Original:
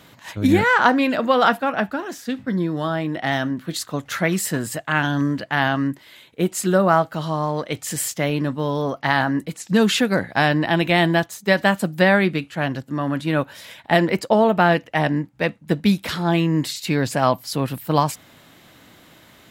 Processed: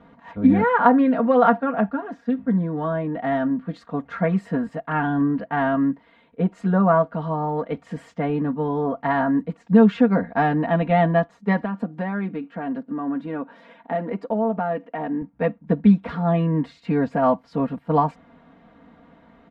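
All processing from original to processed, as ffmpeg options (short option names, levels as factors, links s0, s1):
-filter_complex "[0:a]asettb=1/sr,asplit=3[s0][s1][s2];[s0]atrim=end=11.624[s3];[s1]atrim=start=11.62:end=15.22,asetpts=PTS-STARTPTS,afade=t=in:d=0.004:c=qsin,afade=t=out:st=3.596:d=0.004:c=qsin,lowshelf=f=150:t=q:w=1.5:g=-14,acompressor=threshold=0.0447:ratio=2:attack=3.2:release=140:knee=1:detection=peak[s4];[s2]atrim=start=15.216[s5];[s3][s4]acrossfade=d=0.004:c1=hsin:c2=qsin[s6];[s6][s5]acrossfade=d=0.004:c1=qsin:c2=hsin,lowpass=1100,equalizer=f=390:t=o:w=0.38:g=-4,aecho=1:1:4.3:0.87,volume=0.891"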